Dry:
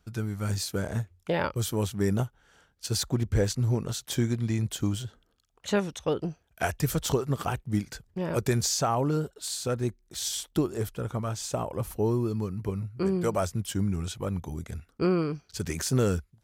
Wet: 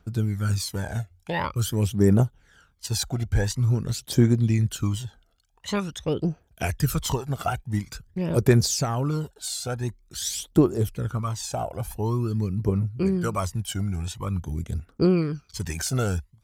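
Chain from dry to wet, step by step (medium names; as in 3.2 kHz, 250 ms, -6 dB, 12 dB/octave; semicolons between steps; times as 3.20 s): phaser 0.47 Hz, delay 1.5 ms, feedback 63%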